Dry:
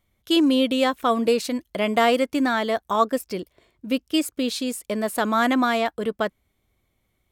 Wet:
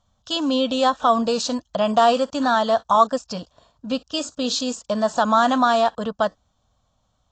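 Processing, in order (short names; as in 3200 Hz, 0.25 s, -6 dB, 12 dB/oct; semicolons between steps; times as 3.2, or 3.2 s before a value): in parallel at 0 dB: limiter -17.5 dBFS, peak gain reduction 11.5 dB; on the sum: low shelf 170 Hz -6.5 dB; fixed phaser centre 890 Hz, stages 4; gain +3.5 dB; AAC 32 kbps 16000 Hz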